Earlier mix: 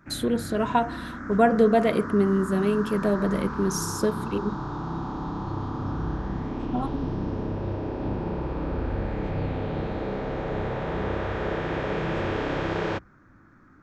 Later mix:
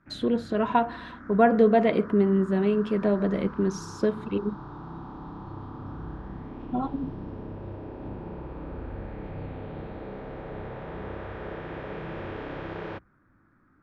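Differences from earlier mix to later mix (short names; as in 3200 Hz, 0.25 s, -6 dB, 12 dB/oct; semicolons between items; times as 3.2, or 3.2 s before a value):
background -8.5 dB; master: add LPF 3400 Hz 12 dB/oct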